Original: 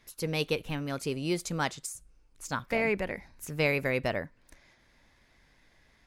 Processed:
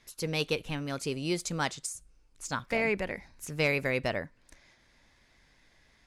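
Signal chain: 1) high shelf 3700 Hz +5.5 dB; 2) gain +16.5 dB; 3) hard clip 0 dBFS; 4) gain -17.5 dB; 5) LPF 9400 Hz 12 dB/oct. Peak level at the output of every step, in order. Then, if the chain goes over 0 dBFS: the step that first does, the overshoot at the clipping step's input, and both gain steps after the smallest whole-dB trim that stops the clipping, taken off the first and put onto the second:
-12.0, +4.5, 0.0, -17.5, -17.0 dBFS; step 2, 4.5 dB; step 2 +11.5 dB, step 4 -12.5 dB

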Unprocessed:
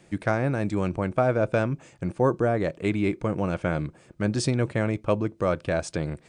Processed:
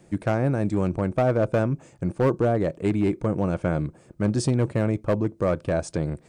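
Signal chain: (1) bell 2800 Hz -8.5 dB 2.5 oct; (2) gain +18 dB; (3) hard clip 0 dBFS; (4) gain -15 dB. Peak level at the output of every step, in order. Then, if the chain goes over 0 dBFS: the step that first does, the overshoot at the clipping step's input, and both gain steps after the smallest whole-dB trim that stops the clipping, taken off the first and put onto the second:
-11.0, +7.0, 0.0, -15.0 dBFS; step 2, 7.0 dB; step 2 +11 dB, step 4 -8 dB

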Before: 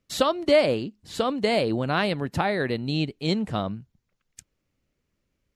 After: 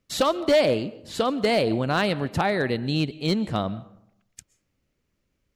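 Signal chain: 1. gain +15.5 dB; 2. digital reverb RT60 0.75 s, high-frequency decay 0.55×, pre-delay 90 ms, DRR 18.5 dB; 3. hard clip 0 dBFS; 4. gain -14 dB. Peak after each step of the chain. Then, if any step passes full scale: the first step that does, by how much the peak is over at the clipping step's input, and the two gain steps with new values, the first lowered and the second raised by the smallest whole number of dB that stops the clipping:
+8.5, +8.5, 0.0, -14.0 dBFS; step 1, 8.5 dB; step 1 +6.5 dB, step 4 -5 dB

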